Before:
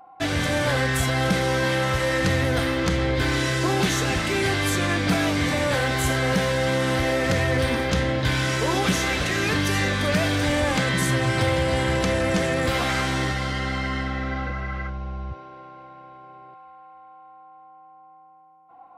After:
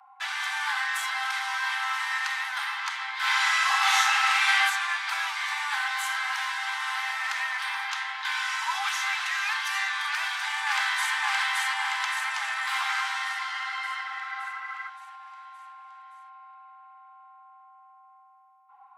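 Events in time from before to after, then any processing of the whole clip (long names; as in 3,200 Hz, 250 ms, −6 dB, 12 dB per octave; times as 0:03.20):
0:03.18–0:04.59: thrown reverb, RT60 1 s, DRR −7 dB
0:10.09–0:11.16: delay throw 570 ms, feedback 60%, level −1 dB
whole clip: Butterworth high-pass 810 Hz 96 dB per octave; high-shelf EQ 3,800 Hz −8.5 dB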